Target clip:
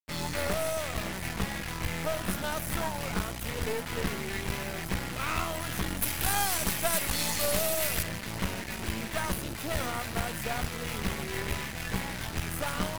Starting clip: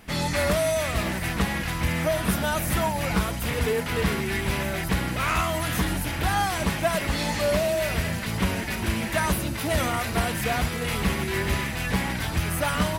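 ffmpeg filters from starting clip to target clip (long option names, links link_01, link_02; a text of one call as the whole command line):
ffmpeg -i in.wav -filter_complex "[0:a]asettb=1/sr,asplit=3[link_01][link_02][link_03];[link_01]atrim=end=6.024[link_04];[link_02]atrim=start=6.02:end=8.03,asetpts=PTS-STARTPTS,afade=type=in:duration=0.004:curve=qsin,afade=type=out:start_time=2.006:duration=0.004:curve=qsin,aemphasis=mode=production:type=75kf[link_05];[link_03]atrim=start=8.026[link_06];[link_04][link_05]acrossfade=duration=0.004:curve1=hsin:curve2=qsin[link_07];[link_07][link_06]acrossfade=duration=0.004:curve1=qsin:curve2=hsin,acrusher=bits=4:mix=0:aa=0.5,aeval=exprs='0.422*(cos(1*acos(clip(val(0)/0.422,-1,1)))-cos(1*PI/2))+0.188*(cos(4*acos(clip(val(0)/0.422,-1,1)))-cos(4*PI/2))+0.0944*(cos(6*acos(clip(val(0)/0.422,-1,1)))-cos(6*PI/2))+0.0473*(cos(8*acos(clip(val(0)/0.422,-1,1)))-cos(8*PI/2))':channel_layout=same,volume=-8.5dB" out.wav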